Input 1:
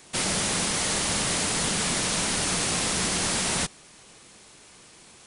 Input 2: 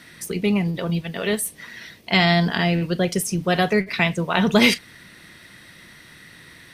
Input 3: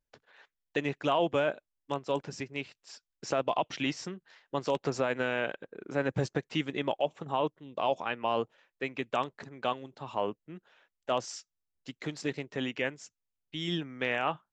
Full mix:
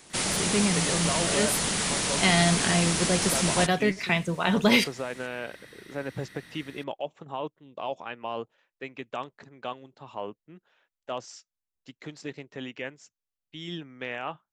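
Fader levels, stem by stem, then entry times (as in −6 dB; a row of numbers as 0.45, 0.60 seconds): −1.5, −5.0, −4.0 decibels; 0.00, 0.10, 0.00 seconds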